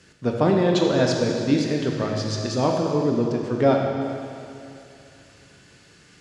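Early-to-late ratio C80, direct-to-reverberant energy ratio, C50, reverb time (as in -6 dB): 3.0 dB, 0.5 dB, 2.0 dB, 2.6 s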